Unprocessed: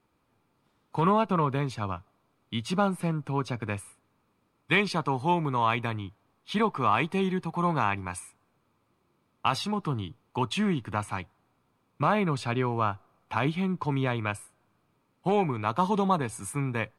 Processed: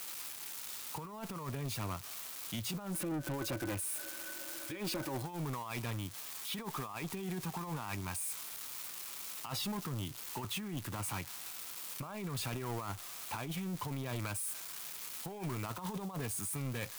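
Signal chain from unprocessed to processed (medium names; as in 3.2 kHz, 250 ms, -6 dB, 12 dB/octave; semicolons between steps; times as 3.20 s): zero-crossing glitches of -24 dBFS; compressor with a negative ratio -29 dBFS, ratio -0.5; 2.94–5.22 s: small resonant body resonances 330/560/1500 Hz, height 17 dB, ringing for 90 ms; saturation -28.5 dBFS, distortion -9 dB; trim -5 dB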